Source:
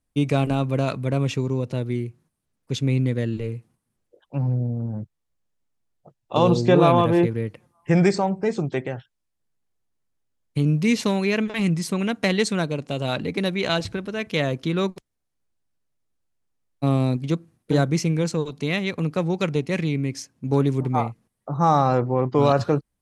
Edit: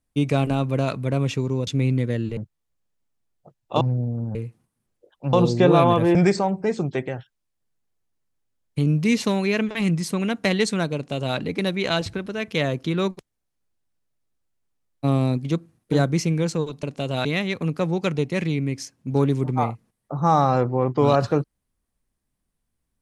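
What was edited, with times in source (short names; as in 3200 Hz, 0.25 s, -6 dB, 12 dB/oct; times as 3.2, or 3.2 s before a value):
1.67–2.75 cut
3.45–4.43 swap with 4.97–6.41
7.23–7.94 cut
12.74–13.16 copy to 18.62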